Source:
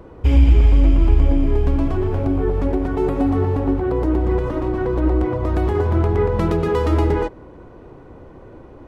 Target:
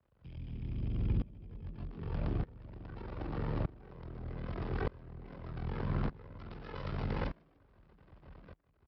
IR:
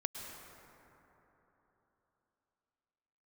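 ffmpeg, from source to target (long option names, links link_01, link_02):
-filter_complex "[0:a]equalizer=frequency=310:width=0.33:gain=-14.5,acompressor=threshold=-26dB:ratio=6,aeval=exprs='val(0)*sin(2*PI*22*n/s)':channel_layout=same,aresample=11025,aeval=exprs='max(val(0),0)':channel_layout=same,aresample=44100,afreqshift=38,asplit=2[link_01][link_02];[link_02]asplit=4[link_03][link_04][link_05][link_06];[link_03]adelay=148,afreqshift=120,volume=-10.5dB[link_07];[link_04]adelay=296,afreqshift=240,volume=-19.4dB[link_08];[link_05]adelay=444,afreqshift=360,volume=-28.2dB[link_09];[link_06]adelay=592,afreqshift=480,volume=-37.1dB[link_10];[link_07][link_08][link_09][link_10]amix=inputs=4:normalize=0[link_11];[link_01][link_11]amix=inputs=2:normalize=0,aeval=exprs='val(0)*pow(10,-23*if(lt(mod(-0.82*n/s,1),2*abs(-0.82)/1000),1-mod(-0.82*n/s,1)/(2*abs(-0.82)/1000),(mod(-0.82*n/s,1)-2*abs(-0.82)/1000)/(1-2*abs(-0.82)/1000))/20)':channel_layout=same,volume=4dB"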